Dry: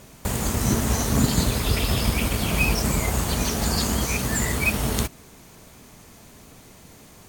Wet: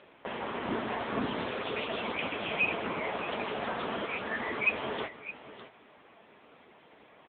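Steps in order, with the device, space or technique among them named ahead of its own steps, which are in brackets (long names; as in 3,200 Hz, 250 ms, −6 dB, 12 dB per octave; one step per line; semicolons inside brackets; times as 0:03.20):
satellite phone (band-pass filter 400–3,400 Hz; single-tap delay 606 ms −14 dB; AMR narrowband 6.7 kbit/s 8,000 Hz)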